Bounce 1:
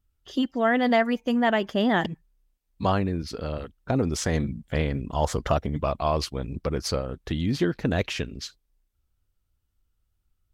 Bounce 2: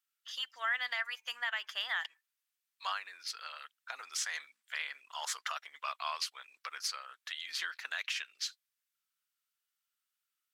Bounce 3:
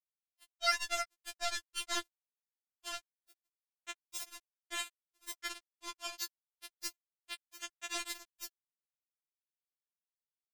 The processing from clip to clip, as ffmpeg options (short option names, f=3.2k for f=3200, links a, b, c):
-af "highpass=f=1.3k:w=0.5412,highpass=f=1.3k:w=1.3066,alimiter=limit=-23.5dB:level=0:latency=1:release=197"
-af "acrusher=bits=3:mix=0:aa=0.5,afftfilt=real='re*4*eq(mod(b,16),0)':imag='im*4*eq(mod(b,16),0)':win_size=2048:overlap=0.75,volume=12dB"